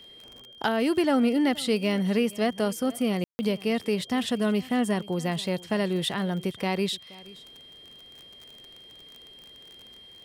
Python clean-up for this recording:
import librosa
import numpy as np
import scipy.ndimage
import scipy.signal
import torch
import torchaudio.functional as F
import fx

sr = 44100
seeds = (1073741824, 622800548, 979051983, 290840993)

y = fx.fix_declick_ar(x, sr, threshold=6.5)
y = fx.notch(y, sr, hz=3200.0, q=30.0)
y = fx.fix_ambience(y, sr, seeds[0], print_start_s=7.62, print_end_s=8.12, start_s=3.24, end_s=3.39)
y = fx.fix_echo_inverse(y, sr, delay_ms=474, level_db=-21.5)